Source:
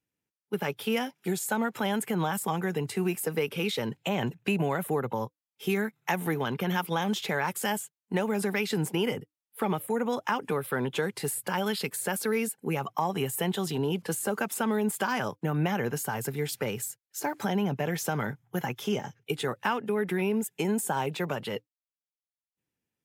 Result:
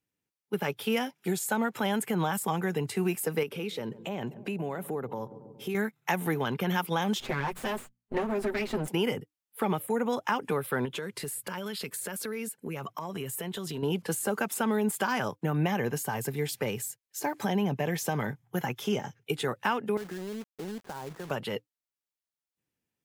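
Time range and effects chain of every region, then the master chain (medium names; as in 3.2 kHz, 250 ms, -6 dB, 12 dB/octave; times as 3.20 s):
3.43–5.75 s: filtered feedback delay 138 ms, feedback 77%, low-pass 810 Hz, level -21.5 dB + compression 2:1, threshold -42 dBFS + peaking EQ 370 Hz +5.5 dB 2.5 oct
7.20–8.88 s: comb filter that takes the minimum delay 7.8 ms + treble shelf 3.4 kHz -11 dB + hum notches 60/120/180/240 Hz
10.85–13.83 s: band-stop 790 Hz, Q 5.1 + compression 5:1, threshold -32 dBFS
15.53–18.47 s: de-esser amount 50% + band-stop 1.4 kHz, Q 8.7
19.97–21.31 s: Chebyshev low-pass 1.8 kHz, order 6 + compression 2.5:1, threshold -40 dBFS + companded quantiser 4-bit
whole clip: none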